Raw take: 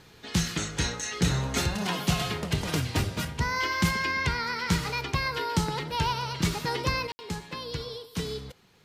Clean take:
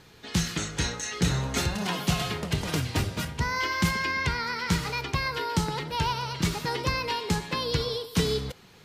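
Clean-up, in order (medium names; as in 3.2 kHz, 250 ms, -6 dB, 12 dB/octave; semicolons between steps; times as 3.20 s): de-click; room tone fill 7.12–7.19 s; gain correction +7.5 dB, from 7.07 s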